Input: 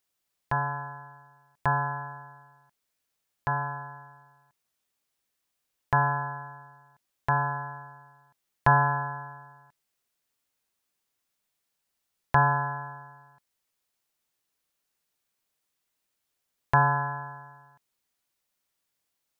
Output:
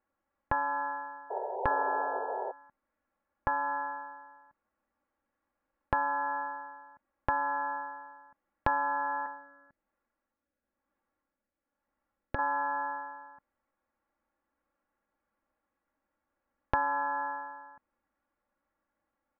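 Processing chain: LPF 1600 Hz 24 dB/oct; comb 3.6 ms, depth 98%; compressor 5:1, threshold -32 dBFS, peak gain reduction 15 dB; 1.3–2.52 painted sound noise 370–980 Hz -40 dBFS; 9.26–12.39 rotary speaker horn 1 Hz; gain +4.5 dB

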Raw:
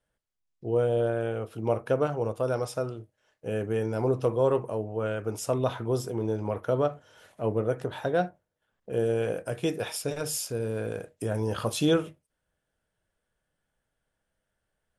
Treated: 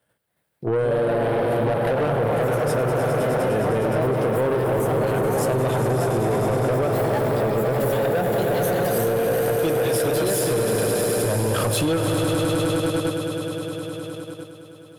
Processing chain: on a send: swelling echo 0.103 s, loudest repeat 5, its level -10 dB; on the sum: echoes that change speed 0.276 s, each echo +3 st, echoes 3, each echo -6 dB; in parallel at +2 dB: level quantiser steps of 16 dB; on the sum: HPF 84 Hz 24 dB/oct; high shelf 10000 Hz +7 dB; compressor, threshold -21 dBFS, peak gain reduction 6.5 dB; bell 6300 Hz -8 dB 0.73 oct; soft clip -24 dBFS, distortion -12 dB; gain +7.5 dB

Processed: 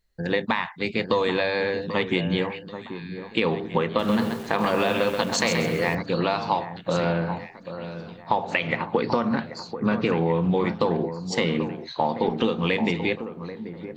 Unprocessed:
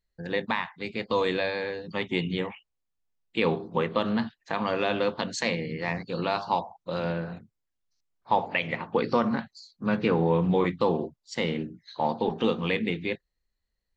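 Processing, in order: compressor, threshold -27 dBFS, peak gain reduction 9 dB; echo with dull and thin repeats by turns 0.786 s, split 1600 Hz, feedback 58%, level -10.5 dB; 3.86–5.95 lo-fi delay 0.131 s, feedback 35%, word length 8-bit, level -5 dB; gain +8 dB

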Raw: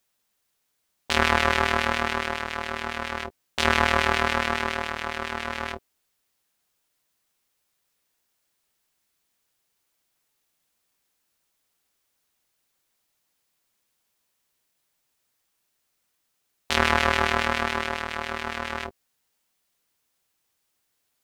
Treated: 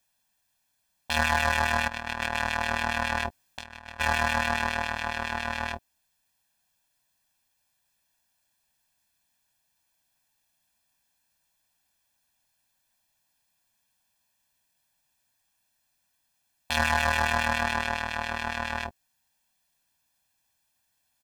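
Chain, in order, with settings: comb 1.2 ms, depth 74%; 1.88–4 negative-ratio compressor -29 dBFS, ratio -0.5; hard clip -11 dBFS, distortion -10 dB; gain -2 dB

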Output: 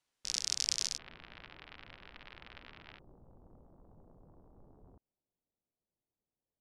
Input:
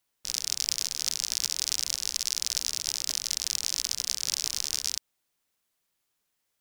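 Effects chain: Bessel low-pass 7200 Hz, order 8, from 0.96 s 1600 Hz, from 2.98 s 510 Hz; gain -2.5 dB

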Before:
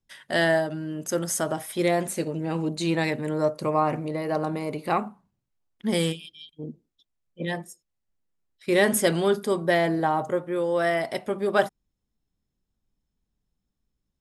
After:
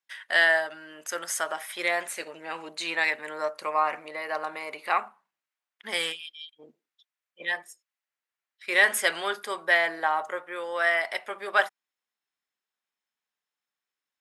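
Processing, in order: HPF 700 Hz 12 dB/oct; bell 1900 Hz +10.5 dB 1.9 oct; gain -4 dB

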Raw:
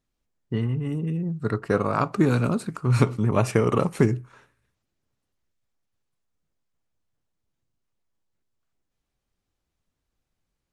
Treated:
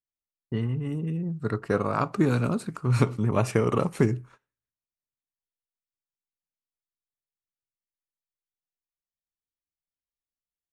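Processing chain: gate -45 dBFS, range -23 dB; gain -2.5 dB

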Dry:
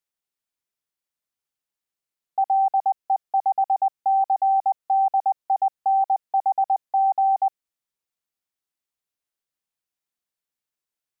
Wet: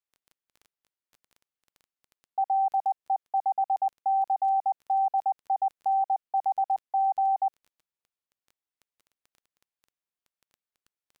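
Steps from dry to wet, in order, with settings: tone controls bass -2 dB, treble -5 dB; crackle 11/s -37 dBFS; gain -5 dB

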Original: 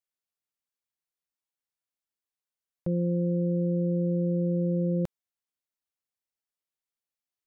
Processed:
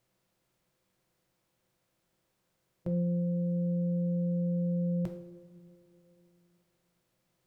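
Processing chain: per-bin compression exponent 0.6; two-slope reverb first 0.55 s, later 3.2 s, from -16 dB, DRR 4 dB; gain -5 dB

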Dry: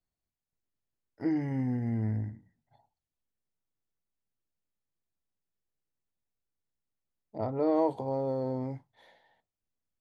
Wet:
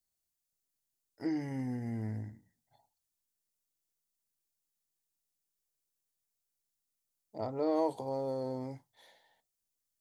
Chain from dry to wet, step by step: tone controls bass -4 dB, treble +14 dB; gain -3.5 dB

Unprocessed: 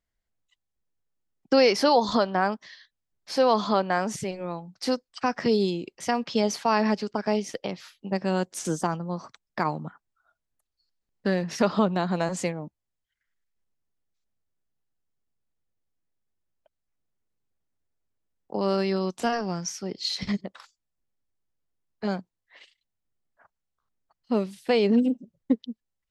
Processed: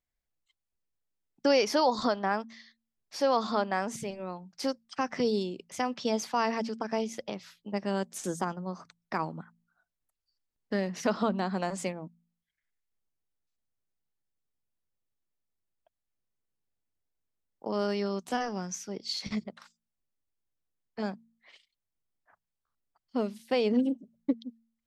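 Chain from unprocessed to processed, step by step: varispeed +5%; de-hum 56.87 Hz, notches 4; gain -5 dB

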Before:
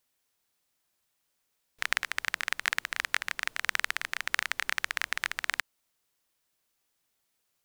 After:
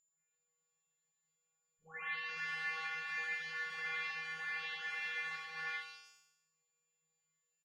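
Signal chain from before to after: spectral delay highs late, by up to 0.559 s; in parallel at +2 dB: level quantiser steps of 9 dB; on the sum: notches 50/100/150 Hz; resonator 160 Hz, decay 0.88 s, harmonics odd, mix 100%; whine 7100 Hz -70 dBFS; air absorption 200 m; on a send: echo 85 ms -6 dB; on the sum: gain +9 dB

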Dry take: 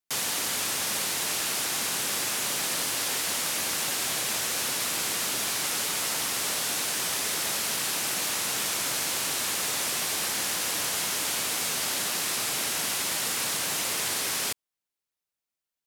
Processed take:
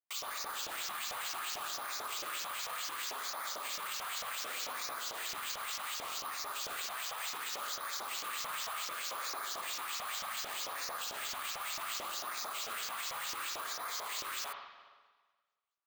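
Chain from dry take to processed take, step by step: LFO band-pass saw up 4.5 Hz 560–7400 Hz; bell 1200 Hz +11.5 dB 0.39 oct; LFO notch sine 0.67 Hz 300–3100 Hz; careless resampling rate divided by 4×, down filtered, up hold; limiter -35.5 dBFS, peak gain reduction 11 dB; high shelf 5500 Hz +7 dB; spring tank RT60 1.4 s, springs 47/59 ms, chirp 50 ms, DRR 3.5 dB; gain +1 dB

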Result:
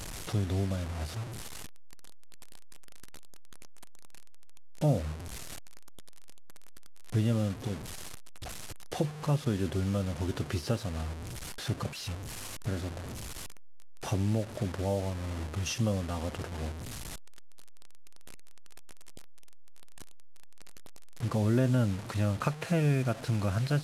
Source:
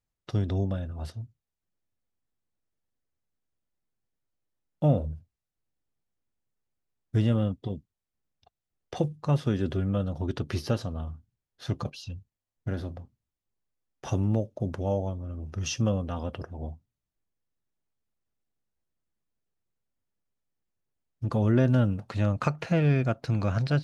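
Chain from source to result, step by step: delta modulation 64 kbps, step -35 dBFS; in parallel at +1.5 dB: compressor, threshold -35 dBFS, peak gain reduction 17 dB; on the sum: gain -5.5 dB

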